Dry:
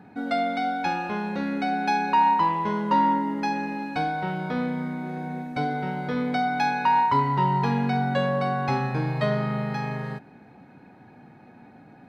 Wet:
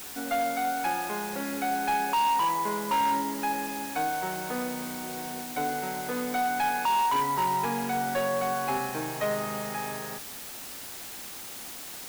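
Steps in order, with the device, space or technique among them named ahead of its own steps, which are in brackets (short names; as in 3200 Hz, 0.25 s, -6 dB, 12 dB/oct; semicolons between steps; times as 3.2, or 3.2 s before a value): aircraft radio (BPF 310–2700 Hz; hard clip -21 dBFS, distortion -13 dB; white noise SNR 11 dB); gain -1.5 dB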